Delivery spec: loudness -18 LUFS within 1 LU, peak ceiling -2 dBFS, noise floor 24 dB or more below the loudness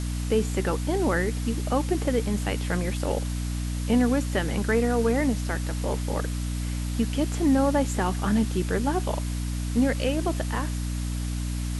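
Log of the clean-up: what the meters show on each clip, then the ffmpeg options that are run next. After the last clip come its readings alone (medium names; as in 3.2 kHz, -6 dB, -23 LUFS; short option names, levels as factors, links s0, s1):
hum 60 Hz; highest harmonic 300 Hz; hum level -26 dBFS; noise floor -29 dBFS; noise floor target -51 dBFS; loudness -26.5 LUFS; peak level -11.5 dBFS; loudness target -18.0 LUFS
-> -af "bandreject=f=60:t=h:w=6,bandreject=f=120:t=h:w=6,bandreject=f=180:t=h:w=6,bandreject=f=240:t=h:w=6,bandreject=f=300:t=h:w=6"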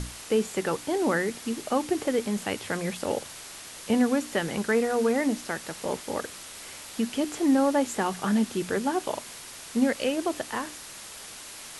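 hum not found; noise floor -43 dBFS; noise floor target -52 dBFS
-> -af "afftdn=nr=9:nf=-43"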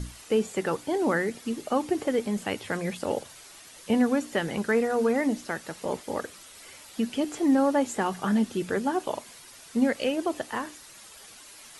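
noise floor -49 dBFS; noise floor target -52 dBFS
-> -af "afftdn=nr=6:nf=-49"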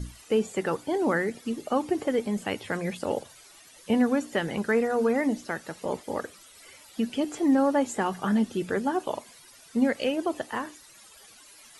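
noise floor -53 dBFS; loudness -28.0 LUFS; peak level -12.5 dBFS; loudness target -18.0 LUFS
-> -af "volume=3.16"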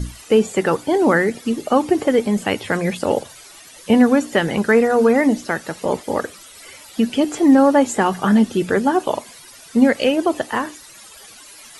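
loudness -18.0 LUFS; peak level -2.5 dBFS; noise floor -43 dBFS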